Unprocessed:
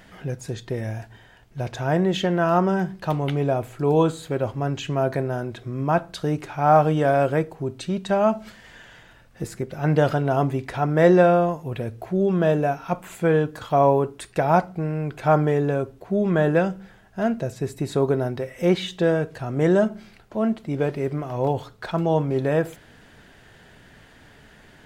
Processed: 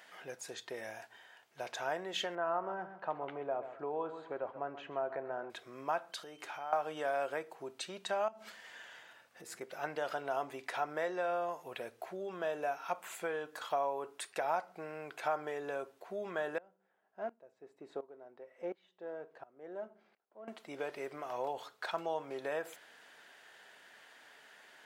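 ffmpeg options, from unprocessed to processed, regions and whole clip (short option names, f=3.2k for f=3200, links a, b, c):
-filter_complex "[0:a]asettb=1/sr,asplit=3[a][b][c];[a]atrim=end=2.354[d];[b]atrim=start=2.35:end=5.5,asetpts=PTS-STARTPTS,afade=t=in:d=0.004:c=qsin,afade=t=out:st=3.146:d=0.004:c=qsin,lowpass=1.4k,aecho=1:1:131|262|393:0.188|0.0527|0.0148,atrim=end_sample=138915[e];[c]atrim=start=5.496[f];[d][e]acrossfade=d=0.004:c1=hsin:c2=qsin[g];[g][f]acrossfade=d=0.004:c1=qsin:c2=hsin,asettb=1/sr,asplit=3[h][i][j];[h]atrim=end=6.124[k];[i]atrim=start=6.12:end=6.73,asetpts=PTS-STARTPTS,afade=t=in:d=0.004:c=qsin,afade=t=out:st=0.606:d=0.004:c=qsin,acompressor=threshold=-32dB:ratio=5:attack=3.2:release=140:knee=1:detection=peak,aeval=exprs='val(0)+0.00126*sin(2*PI*3100*n/s)':c=same[l];[j]atrim=start=6.726[m];[k][l]acrossfade=d=0.004:c1=hsin:c2=qsin[n];[n][m]acrossfade=d=0.004:c1=qsin:c2=hsin,asettb=1/sr,asplit=3[o][p][q];[o]atrim=end=8.284[r];[p]atrim=start=8.28:end=9.61,asetpts=PTS-STARTPTS,afade=t=in:d=0.004:c=qsin,afade=t=out:st=1.326:d=0.004:c=qsin,acompressor=threshold=-34dB:ratio=5:attack=3.2:release=140:knee=1:detection=peak,lowshelf=f=290:g=7.5[s];[q]atrim=start=9.606[t];[r][s]acrossfade=d=0.004:c1=hsin:c2=qsin[u];[u][t]acrossfade=d=0.004:c1=qsin:c2=hsin,asettb=1/sr,asplit=3[v][w][x];[v]atrim=end=16.584[y];[w]atrim=start=16.58:end=20.48,asetpts=PTS-STARTPTS,afade=t=in:d=0.004:c=qsin,afade=t=out:st=3.896:d=0.004:c=qsin,aeval=exprs='if(lt(val(0),0),0.708*val(0),val(0))':c=same,bandpass=f=320:t=q:w=0.59,aeval=exprs='val(0)*pow(10,-20*if(lt(mod(-1.4*n/s,1),2*abs(-1.4)/1000),1-mod(-1.4*n/s,1)/(2*abs(-1.4)/1000),(mod(-1.4*n/s,1)-2*abs(-1.4)/1000)/(1-2*abs(-1.4)/1000))/20)':c=same[z];[x]atrim=start=20.476[aa];[y][z]acrossfade=d=0.004:c1=hsin:c2=qsin[ab];[ab][aa]acrossfade=d=0.004:c1=qsin:c2=hsin,acompressor=threshold=-22dB:ratio=6,highpass=650,volume=-5dB"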